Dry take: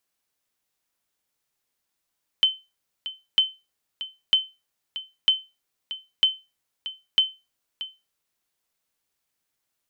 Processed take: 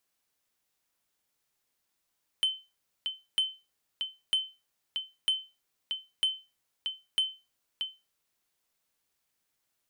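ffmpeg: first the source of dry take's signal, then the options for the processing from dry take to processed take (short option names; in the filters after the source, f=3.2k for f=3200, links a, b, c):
-f lavfi -i "aevalsrc='0.316*(sin(2*PI*3070*mod(t,0.95))*exp(-6.91*mod(t,0.95)/0.25)+0.188*sin(2*PI*3070*max(mod(t,0.95)-0.63,0))*exp(-6.91*max(mod(t,0.95)-0.63,0)/0.25))':d=5.7:s=44100"
-af "acompressor=threshold=-21dB:ratio=6,asoftclip=type=tanh:threshold=-21dB"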